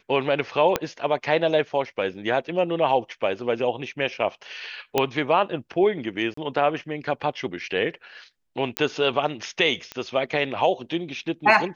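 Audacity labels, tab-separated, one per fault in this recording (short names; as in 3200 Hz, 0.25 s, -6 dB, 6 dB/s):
0.760000	0.760000	pop -6 dBFS
2.140000	2.150000	gap 5.4 ms
4.980000	4.980000	pop -6 dBFS
6.340000	6.370000	gap 34 ms
8.770000	8.770000	pop -6 dBFS
9.920000	9.920000	pop -16 dBFS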